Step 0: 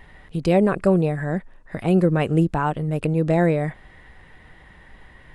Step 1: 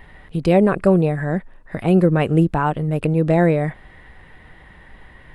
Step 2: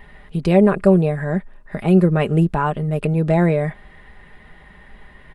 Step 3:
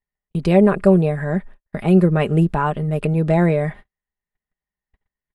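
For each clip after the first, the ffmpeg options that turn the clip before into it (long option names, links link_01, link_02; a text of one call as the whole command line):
ffmpeg -i in.wav -af "equalizer=frequency=6400:width=1.3:gain=-6,volume=3dB" out.wav
ffmpeg -i in.wav -af "aecho=1:1:4.9:0.46,volume=-1dB" out.wav
ffmpeg -i in.wav -af "agate=range=-47dB:threshold=-34dB:ratio=16:detection=peak" out.wav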